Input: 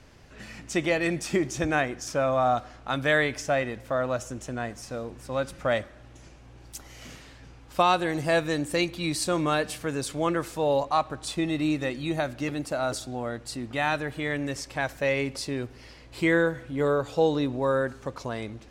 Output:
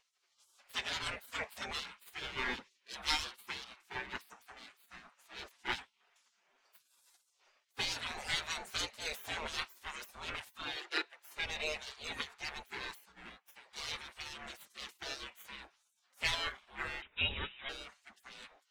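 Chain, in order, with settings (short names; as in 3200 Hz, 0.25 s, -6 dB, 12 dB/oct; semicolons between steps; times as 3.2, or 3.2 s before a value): minimum comb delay 6.4 ms; spectral gate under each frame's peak -20 dB weak; 10.76–11.34 steep high-pass 300 Hz 36 dB/oct; 13.12–13.58 gate -52 dBFS, range -7 dB; 17.02–17.69 inverted band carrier 3800 Hz; spectral expander 1.5:1; gain +1.5 dB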